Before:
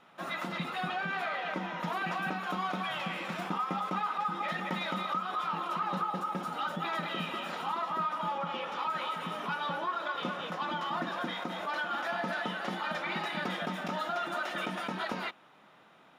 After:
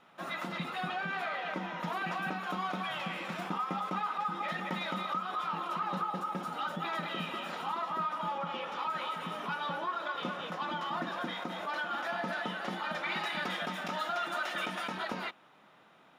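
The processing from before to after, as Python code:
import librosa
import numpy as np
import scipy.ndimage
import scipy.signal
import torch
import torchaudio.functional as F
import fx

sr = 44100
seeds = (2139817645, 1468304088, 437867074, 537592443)

y = fx.tilt_shelf(x, sr, db=-3.5, hz=750.0, at=(13.03, 14.98))
y = F.gain(torch.from_numpy(y), -1.5).numpy()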